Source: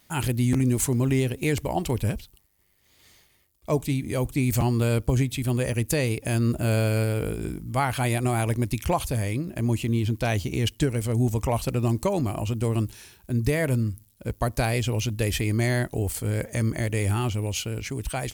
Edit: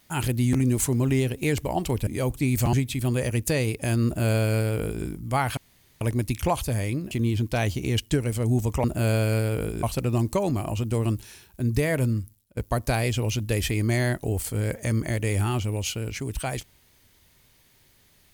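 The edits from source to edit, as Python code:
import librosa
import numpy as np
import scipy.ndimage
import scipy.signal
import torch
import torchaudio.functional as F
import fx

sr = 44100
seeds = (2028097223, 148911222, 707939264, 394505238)

y = fx.edit(x, sr, fx.cut(start_s=2.07, length_s=1.95),
    fx.cut(start_s=4.68, length_s=0.48),
    fx.duplicate(start_s=6.48, length_s=0.99, to_s=11.53),
    fx.room_tone_fill(start_s=8.0, length_s=0.44),
    fx.cut(start_s=9.54, length_s=0.26),
    fx.fade_out_to(start_s=13.88, length_s=0.39, floor_db=-22.0), tone=tone)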